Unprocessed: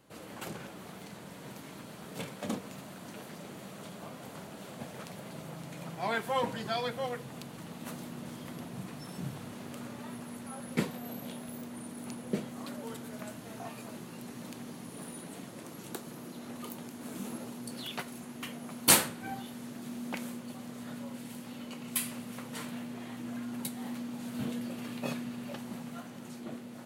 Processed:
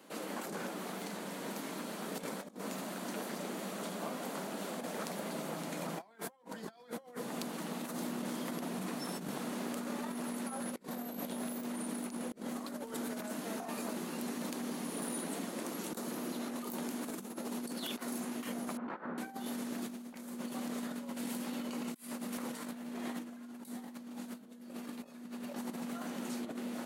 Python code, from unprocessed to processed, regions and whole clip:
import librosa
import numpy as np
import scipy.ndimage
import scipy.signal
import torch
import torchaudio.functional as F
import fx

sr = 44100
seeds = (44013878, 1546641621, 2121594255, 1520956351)

y = fx.chain(x, sr, fx.ladder_lowpass(hz=1800.0, resonance_pct=30),
    fx.over_compress(threshold_db=-37.0, ratio=-0.5), at=(18.77, 19.18))
y = scipy.signal.sosfilt(scipy.signal.butter(6, 190.0, 'highpass', fs=sr, output='sos'), y)
y = fx.dynamic_eq(y, sr, hz=2800.0, q=1.5, threshold_db=-57.0, ratio=4.0, max_db=-7)
y = fx.over_compress(y, sr, threshold_db=-44.0, ratio=-0.5)
y = F.gain(torch.from_numpy(y), 3.5).numpy()